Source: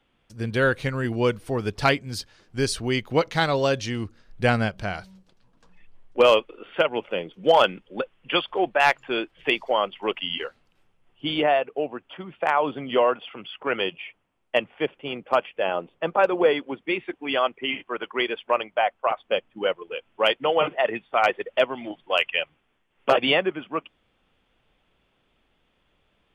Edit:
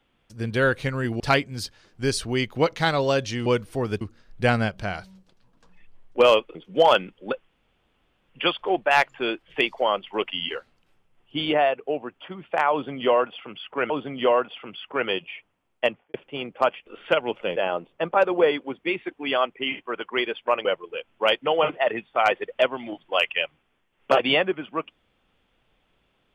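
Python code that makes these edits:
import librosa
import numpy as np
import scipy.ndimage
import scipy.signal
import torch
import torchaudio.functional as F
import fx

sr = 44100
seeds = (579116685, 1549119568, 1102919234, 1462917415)

y = fx.studio_fade_out(x, sr, start_s=14.55, length_s=0.3)
y = fx.edit(y, sr, fx.move(start_s=1.2, length_s=0.55, to_s=4.01),
    fx.move(start_s=6.55, length_s=0.69, to_s=15.58),
    fx.insert_room_tone(at_s=8.18, length_s=0.8),
    fx.repeat(start_s=12.61, length_s=1.18, count=2),
    fx.cut(start_s=18.67, length_s=0.96), tone=tone)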